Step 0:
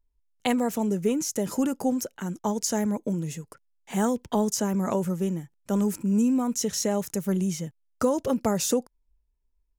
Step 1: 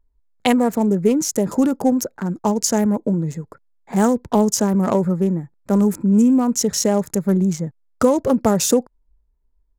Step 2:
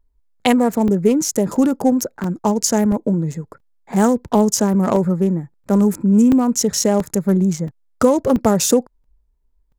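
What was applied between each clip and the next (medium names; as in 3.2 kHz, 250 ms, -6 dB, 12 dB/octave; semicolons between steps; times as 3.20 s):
local Wiener filter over 15 samples; trim +8.5 dB
crackling interface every 0.68 s, samples 128, zero, from 0.88 s; trim +1.5 dB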